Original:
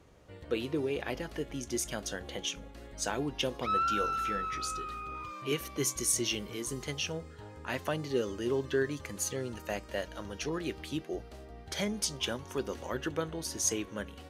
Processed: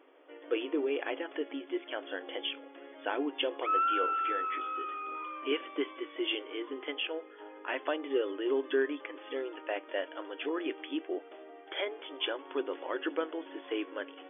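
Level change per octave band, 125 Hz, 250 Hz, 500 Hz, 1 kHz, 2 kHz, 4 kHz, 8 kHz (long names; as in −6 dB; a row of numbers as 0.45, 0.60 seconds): below −35 dB, −0.5 dB, +1.5 dB, +1.5 dB, +1.5 dB, −0.5 dB, below −40 dB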